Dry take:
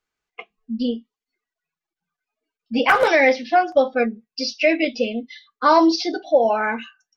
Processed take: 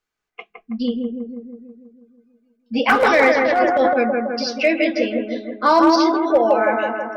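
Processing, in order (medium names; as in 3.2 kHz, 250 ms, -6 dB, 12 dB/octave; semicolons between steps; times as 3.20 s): bucket-brigade echo 162 ms, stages 2048, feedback 62%, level -3 dB; overload inside the chain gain 6.5 dB; 3.35–3.96 s: transient shaper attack -11 dB, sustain +8 dB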